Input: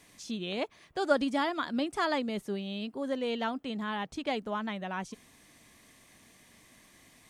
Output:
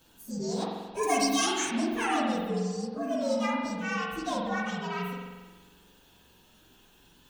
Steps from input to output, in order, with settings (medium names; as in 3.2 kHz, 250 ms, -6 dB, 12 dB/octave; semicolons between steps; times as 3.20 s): frequency axis rescaled in octaves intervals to 124%; 1.03–1.71 s: resonant high shelf 3 kHz +12 dB, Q 1.5; spring tank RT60 1.3 s, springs 44 ms, chirp 45 ms, DRR -1.5 dB; trim +2.5 dB